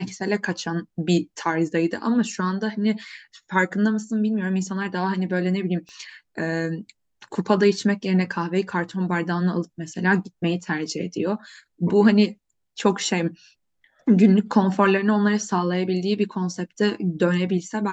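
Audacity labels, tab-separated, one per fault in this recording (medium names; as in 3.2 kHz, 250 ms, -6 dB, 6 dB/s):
5.890000	5.890000	pop -32 dBFS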